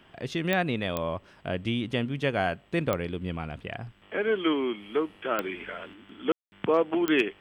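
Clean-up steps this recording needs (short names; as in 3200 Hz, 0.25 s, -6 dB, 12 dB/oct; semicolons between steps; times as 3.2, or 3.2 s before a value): clip repair -12.5 dBFS; de-click; room tone fill 6.32–6.52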